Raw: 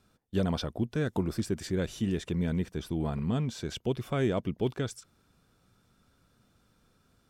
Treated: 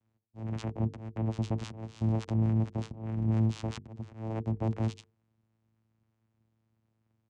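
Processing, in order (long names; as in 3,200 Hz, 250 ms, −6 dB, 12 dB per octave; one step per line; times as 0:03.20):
pitch-shifted copies added −7 semitones −9 dB
dynamic equaliser 240 Hz, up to −7 dB, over −47 dBFS, Q 6.9
leveller curve on the samples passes 3
volume swells 549 ms
brickwall limiter −22.5 dBFS, peak gain reduction 5 dB
channel vocoder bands 4, saw 111 Hz
mains-hum notches 50/100/150/200/250/300/350/400/450 Hz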